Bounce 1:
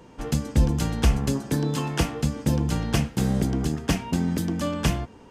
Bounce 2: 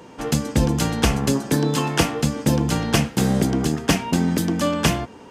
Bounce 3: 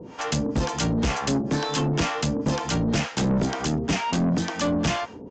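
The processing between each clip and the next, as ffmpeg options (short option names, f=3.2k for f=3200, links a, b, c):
-af "highpass=f=200:p=1,volume=7.5dB"
-filter_complex "[0:a]acrossover=split=590[a][b];[a]aeval=exprs='val(0)*(1-1/2+1/2*cos(2*PI*2.1*n/s))':c=same[c];[b]aeval=exprs='val(0)*(1-1/2-1/2*cos(2*PI*2.1*n/s))':c=same[d];[c][d]amix=inputs=2:normalize=0,aresample=16000,asoftclip=type=tanh:threshold=-25.5dB,aresample=44100,volume=6.5dB"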